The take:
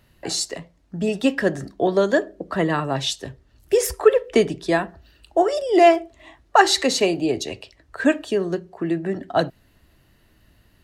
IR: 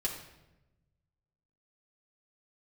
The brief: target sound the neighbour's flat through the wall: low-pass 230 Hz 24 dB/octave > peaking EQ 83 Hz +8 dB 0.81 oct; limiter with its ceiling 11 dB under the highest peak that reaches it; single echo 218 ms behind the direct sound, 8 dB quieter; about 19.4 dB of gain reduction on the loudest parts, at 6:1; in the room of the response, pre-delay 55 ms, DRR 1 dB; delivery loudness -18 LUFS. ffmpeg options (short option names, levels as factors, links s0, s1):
-filter_complex "[0:a]acompressor=threshold=0.0316:ratio=6,alimiter=level_in=1.19:limit=0.0631:level=0:latency=1,volume=0.841,aecho=1:1:218:0.398,asplit=2[s0][s1];[1:a]atrim=start_sample=2205,adelay=55[s2];[s1][s2]afir=irnorm=-1:irlink=0,volume=0.631[s3];[s0][s3]amix=inputs=2:normalize=0,lowpass=f=230:w=0.5412,lowpass=f=230:w=1.3066,equalizer=f=83:t=o:w=0.81:g=8,volume=13.3"